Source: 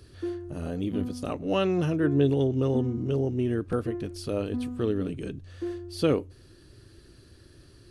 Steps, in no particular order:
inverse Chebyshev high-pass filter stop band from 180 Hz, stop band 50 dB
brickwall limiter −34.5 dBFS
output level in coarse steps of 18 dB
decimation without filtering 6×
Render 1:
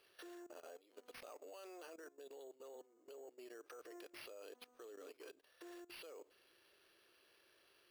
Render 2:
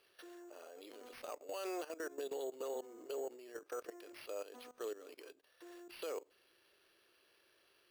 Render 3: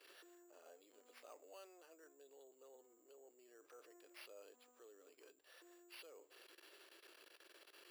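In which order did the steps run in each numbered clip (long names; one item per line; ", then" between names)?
brickwall limiter, then inverse Chebyshev high-pass filter, then output level in coarse steps, then decimation without filtering
inverse Chebyshev high-pass filter, then output level in coarse steps, then brickwall limiter, then decimation without filtering
brickwall limiter, then output level in coarse steps, then decimation without filtering, then inverse Chebyshev high-pass filter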